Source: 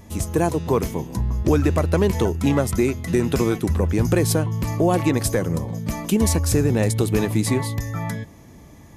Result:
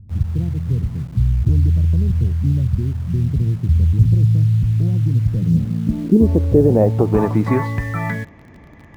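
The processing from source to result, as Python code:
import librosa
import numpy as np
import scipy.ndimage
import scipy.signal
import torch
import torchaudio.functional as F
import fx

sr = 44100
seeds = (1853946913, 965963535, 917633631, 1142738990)

p1 = fx.filter_sweep_lowpass(x, sr, from_hz=120.0, to_hz=2000.0, start_s=5.18, end_s=7.85, q=2.1)
p2 = fx.quant_dither(p1, sr, seeds[0], bits=6, dither='none')
p3 = p1 + (p2 * 10.0 ** (-10.5 / 20.0))
y = p3 * 10.0 ** (1.5 / 20.0)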